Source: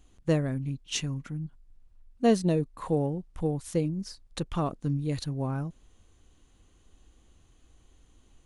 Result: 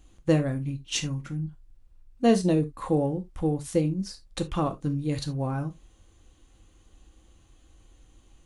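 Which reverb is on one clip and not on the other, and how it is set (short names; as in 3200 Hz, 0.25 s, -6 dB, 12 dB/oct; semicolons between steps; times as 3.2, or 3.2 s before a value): non-linear reverb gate 0.1 s falling, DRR 6 dB; gain +2 dB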